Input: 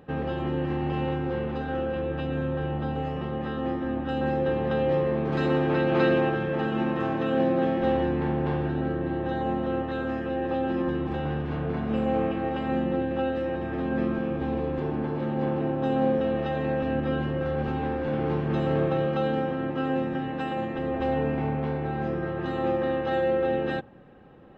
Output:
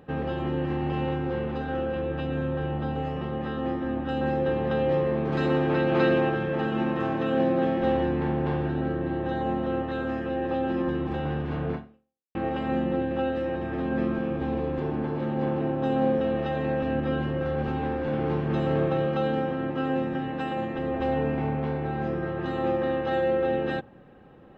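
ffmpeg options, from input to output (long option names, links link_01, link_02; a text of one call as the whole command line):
ffmpeg -i in.wav -filter_complex "[0:a]asplit=2[link_01][link_02];[link_01]atrim=end=12.35,asetpts=PTS-STARTPTS,afade=type=out:start_time=11.74:duration=0.61:curve=exp[link_03];[link_02]atrim=start=12.35,asetpts=PTS-STARTPTS,afade=type=in:duration=0.004:curve=hsin[link_04];[link_03][link_04]concat=n=2:v=0:a=1" out.wav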